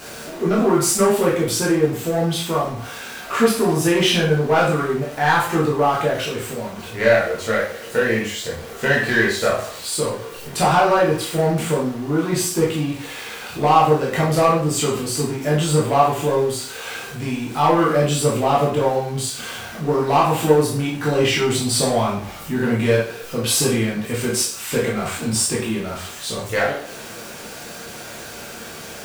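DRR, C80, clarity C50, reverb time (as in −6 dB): −5.5 dB, 9.5 dB, 4.5 dB, 0.45 s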